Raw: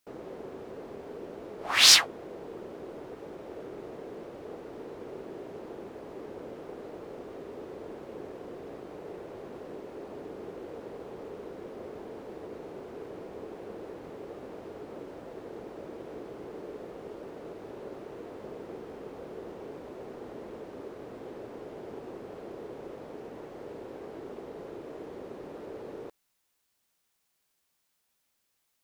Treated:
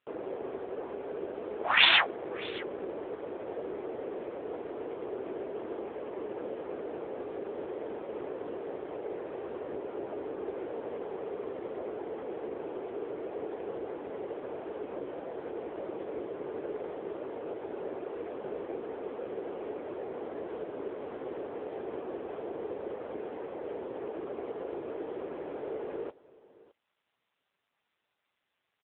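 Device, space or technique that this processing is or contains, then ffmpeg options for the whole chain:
satellite phone: -af "highpass=310,lowpass=3400,aecho=1:1:615:0.0944,volume=7dB" -ar 8000 -c:a libopencore_amrnb -b:a 6700

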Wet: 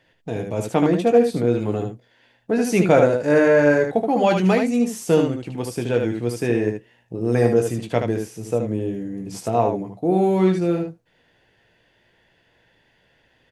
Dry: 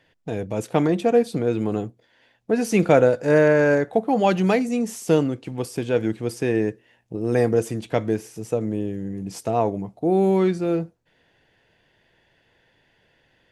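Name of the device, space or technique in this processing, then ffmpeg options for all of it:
slapback doubling: -filter_complex "[0:a]asplit=3[link_01][link_02][link_03];[link_02]adelay=17,volume=-8dB[link_04];[link_03]adelay=75,volume=-5dB[link_05];[link_01][link_04][link_05]amix=inputs=3:normalize=0"

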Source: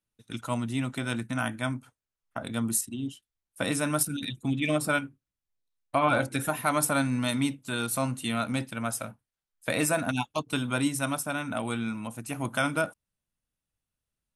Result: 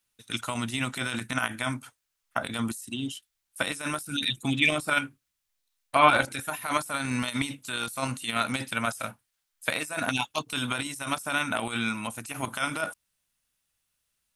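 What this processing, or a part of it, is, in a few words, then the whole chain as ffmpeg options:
de-esser from a sidechain: -filter_complex "[0:a]tiltshelf=frequency=830:gain=-7,asplit=2[link_01][link_02];[link_02]highpass=frequency=6300:width=0.5412,highpass=frequency=6300:width=1.3066,apad=whole_len=633226[link_03];[link_01][link_03]sidechaincompress=threshold=-45dB:ratio=8:attack=1.2:release=24,volume=6dB"

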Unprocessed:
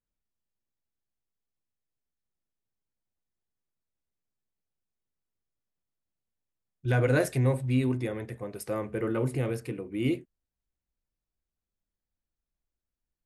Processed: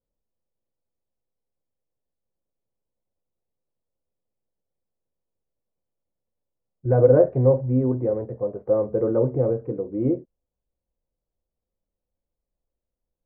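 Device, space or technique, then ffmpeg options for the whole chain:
under water: -af "lowpass=frequency=1000:width=0.5412,lowpass=frequency=1000:width=1.3066,equalizer=frequency=520:width_type=o:width=0.49:gain=10,volume=4dB"

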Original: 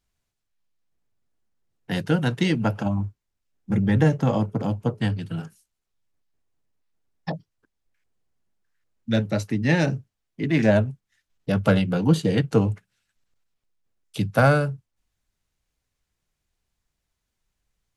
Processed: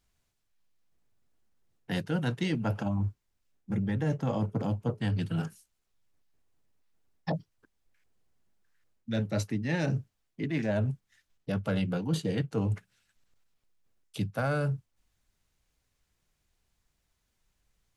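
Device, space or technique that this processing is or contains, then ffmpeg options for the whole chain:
compression on the reversed sound: -af "areverse,acompressor=threshold=-29dB:ratio=8,areverse,volume=2.5dB"

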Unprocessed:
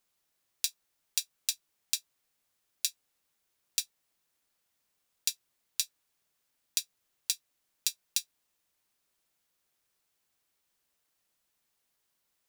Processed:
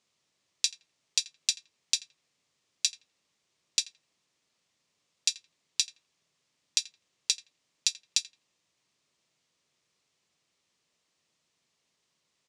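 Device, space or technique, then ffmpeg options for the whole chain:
car door speaker: -filter_complex "[0:a]highpass=91,equalizer=frequency=150:width_type=q:width=4:gain=5,equalizer=frequency=800:width_type=q:width=4:gain=-5,equalizer=frequency=1500:width_type=q:width=4:gain=-7,lowpass=frequency=7300:width=0.5412,lowpass=frequency=7300:width=1.3066,asplit=2[link_01][link_02];[link_02]adelay=84,lowpass=frequency=1300:poles=1,volume=-11.5dB,asplit=2[link_03][link_04];[link_04]adelay=84,lowpass=frequency=1300:poles=1,volume=0.36,asplit=2[link_05][link_06];[link_06]adelay=84,lowpass=frequency=1300:poles=1,volume=0.36,asplit=2[link_07][link_08];[link_08]adelay=84,lowpass=frequency=1300:poles=1,volume=0.36[link_09];[link_01][link_03][link_05][link_07][link_09]amix=inputs=5:normalize=0,volume=6dB"

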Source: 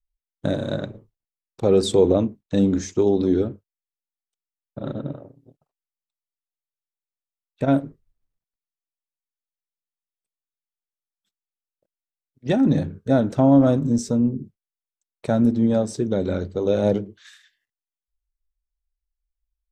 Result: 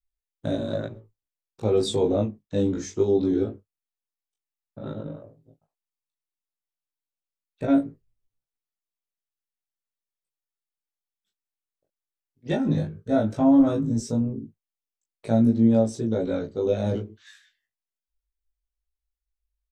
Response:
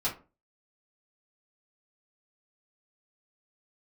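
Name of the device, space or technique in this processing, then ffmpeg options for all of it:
double-tracked vocal: -filter_complex "[0:a]asplit=2[link_01][link_02];[link_02]adelay=18,volume=-2.5dB[link_03];[link_01][link_03]amix=inputs=2:normalize=0,flanger=delay=17.5:depth=3.2:speed=0.13,volume=-3dB"

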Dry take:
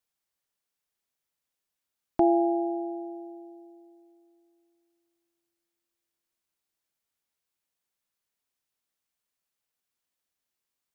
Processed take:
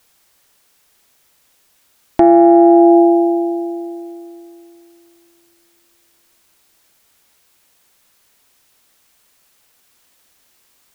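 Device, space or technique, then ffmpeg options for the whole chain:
mastering chain: -af "equalizer=frequency=160:width_type=o:width=0.77:gain=-2.5,acompressor=threshold=-28dB:ratio=2,asoftclip=type=tanh:threshold=-17dB,alimiter=level_in=29dB:limit=-1dB:release=50:level=0:latency=1,volume=-1dB"

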